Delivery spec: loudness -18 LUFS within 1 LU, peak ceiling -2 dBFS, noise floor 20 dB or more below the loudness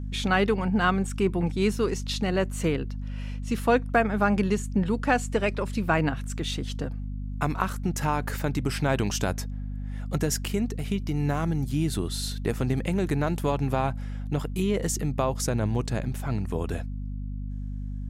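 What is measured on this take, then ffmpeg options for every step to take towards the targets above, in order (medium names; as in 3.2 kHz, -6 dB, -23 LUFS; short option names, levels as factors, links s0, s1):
hum 50 Hz; highest harmonic 250 Hz; hum level -30 dBFS; loudness -27.5 LUFS; peak level -8.5 dBFS; loudness target -18.0 LUFS
-> -af "bandreject=f=50:t=h:w=6,bandreject=f=100:t=h:w=6,bandreject=f=150:t=h:w=6,bandreject=f=200:t=h:w=6,bandreject=f=250:t=h:w=6"
-af "volume=2.99,alimiter=limit=0.794:level=0:latency=1"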